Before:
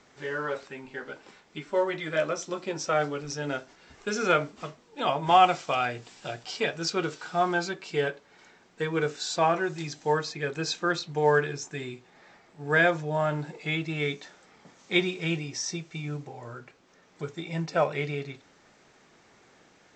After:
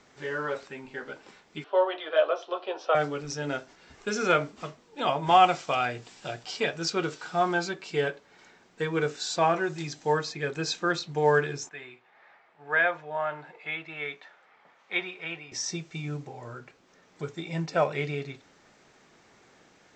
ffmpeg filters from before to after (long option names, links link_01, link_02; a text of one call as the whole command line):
ffmpeg -i in.wav -filter_complex "[0:a]asettb=1/sr,asplit=3[link_01][link_02][link_03];[link_01]atrim=end=1.644[link_04];[link_02]atrim=start=1.64:end=2.95,asetpts=PTS-STARTPTS,afade=type=in:duration=0.004:curve=qsin,afade=type=out:start_time=1.306:duration=0.004:curve=qsin,highpass=frequency=420:width=0.5412,highpass=frequency=420:width=1.3066,equalizer=frequency=460:width_type=q:width=4:gain=4,equalizer=frequency=710:width_type=q:width=4:gain=9,equalizer=frequency=1100:width_type=q:width=4:gain=4,equalizer=frequency=2100:width_type=q:width=4:gain=-10,equalizer=frequency=3100:width_type=q:width=4:gain=7,lowpass=frequency=3700:width=0.5412,lowpass=frequency=3700:width=1.3066[link_05];[link_03]atrim=start=2.946[link_06];[link_04][link_05]acrossfade=duration=0.004:curve1=hsin:curve2=qsin[link_07];[link_07][link_06]acrossfade=duration=0.004:curve1=qsin:curve2=hsin,asettb=1/sr,asplit=3[link_08][link_09][link_10];[link_08]atrim=end=11.694[link_11];[link_09]atrim=start=11.69:end=15.52,asetpts=PTS-STARTPTS,afade=type=in:duration=0.004:curve=qsin,afade=type=out:start_time=3.826:duration=0.004:curve=qsin,acrossover=split=560 3100:gain=0.126 1 0.0794[link_12][link_13][link_14];[link_12][link_13][link_14]amix=inputs=3:normalize=0[link_15];[link_10]atrim=start=15.516[link_16];[link_11][link_15]acrossfade=duration=0.004:curve1=hsin:curve2=qsin[link_17];[link_17][link_16]acrossfade=duration=0.004:curve1=qsin:curve2=hsin" out.wav